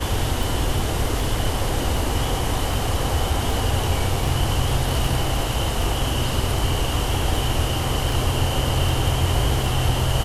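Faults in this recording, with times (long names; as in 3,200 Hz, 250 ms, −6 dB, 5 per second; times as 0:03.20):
scratch tick 78 rpm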